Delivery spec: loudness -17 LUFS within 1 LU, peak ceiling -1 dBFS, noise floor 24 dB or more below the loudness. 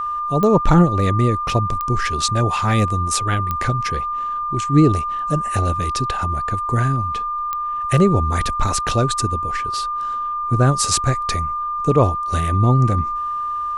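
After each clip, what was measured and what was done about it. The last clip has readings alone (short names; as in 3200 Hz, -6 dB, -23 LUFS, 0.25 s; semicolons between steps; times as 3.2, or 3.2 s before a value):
clicks 4; steady tone 1200 Hz; tone level -21 dBFS; loudness -19.0 LUFS; peak -2.0 dBFS; loudness target -17.0 LUFS
-> de-click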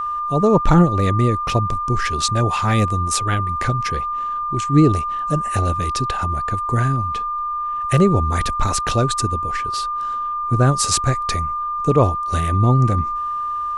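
clicks 0; steady tone 1200 Hz; tone level -21 dBFS
-> notch 1200 Hz, Q 30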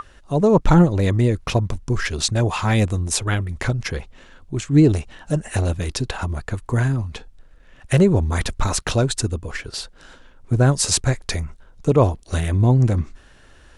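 steady tone none; loudness -20.5 LUFS; peak -3.0 dBFS; loudness target -17.0 LUFS
-> gain +3.5 dB; limiter -1 dBFS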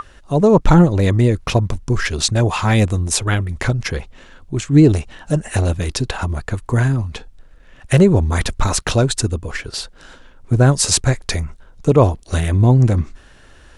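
loudness -17.0 LUFS; peak -1.0 dBFS; noise floor -45 dBFS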